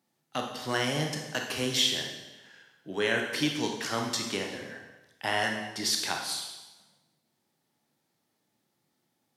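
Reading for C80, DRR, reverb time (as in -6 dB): 6.5 dB, 1.5 dB, 1.1 s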